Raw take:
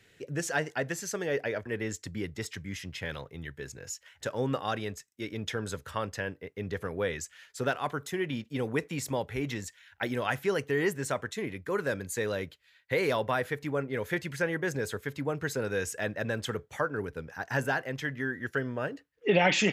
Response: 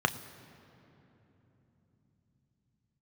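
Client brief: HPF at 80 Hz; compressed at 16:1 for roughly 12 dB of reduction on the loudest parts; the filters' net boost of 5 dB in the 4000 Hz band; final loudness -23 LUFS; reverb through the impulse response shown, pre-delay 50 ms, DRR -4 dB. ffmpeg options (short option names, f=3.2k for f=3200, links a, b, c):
-filter_complex "[0:a]highpass=80,equalizer=f=4k:t=o:g=6.5,acompressor=threshold=-30dB:ratio=16,asplit=2[a][b];[1:a]atrim=start_sample=2205,adelay=50[c];[b][c]afir=irnorm=-1:irlink=0,volume=-6.5dB[d];[a][d]amix=inputs=2:normalize=0,volume=8dB"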